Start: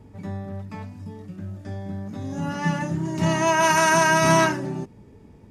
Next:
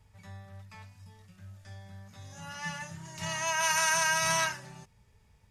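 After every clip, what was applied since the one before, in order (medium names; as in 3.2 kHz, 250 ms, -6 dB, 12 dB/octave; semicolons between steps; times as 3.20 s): amplifier tone stack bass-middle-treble 10-0-10; trim -1.5 dB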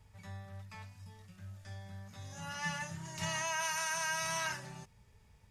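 peak limiter -25 dBFS, peak gain reduction 11 dB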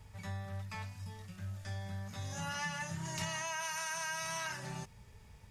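compression 6:1, threshold -42 dBFS, peak gain reduction 10.5 dB; trim +6.5 dB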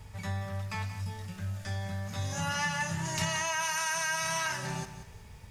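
bit-crushed delay 181 ms, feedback 35%, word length 11-bit, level -12 dB; trim +7 dB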